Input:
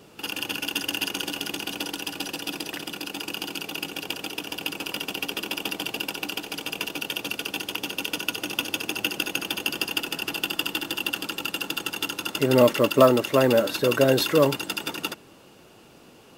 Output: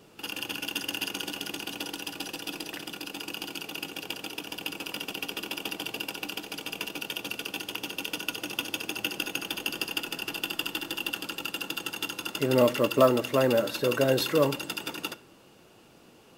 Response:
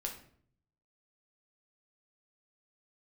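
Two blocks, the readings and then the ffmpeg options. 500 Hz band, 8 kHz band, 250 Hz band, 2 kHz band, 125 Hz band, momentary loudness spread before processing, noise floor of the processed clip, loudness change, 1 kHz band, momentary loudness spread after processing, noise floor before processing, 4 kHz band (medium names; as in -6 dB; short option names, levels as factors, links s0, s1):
-4.5 dB, -4.5 dB, -4.5 dB, -4.5 dB, -4.5 dB, 12 LU, -56 dBFS, -4.5 dB, -4.5 dB, 12 LU, -51 dBFS, -4.5 dB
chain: -filter_complex "[0:a]asplit=2[s0][s1];[1:a]atrim=start_sample=2205[s2];[s1][s2]afir=irnorm=-1:irlink=0,volume=0.335[s3];[s0][s3]amix=inputs=2:normalize=0,volume=0.473"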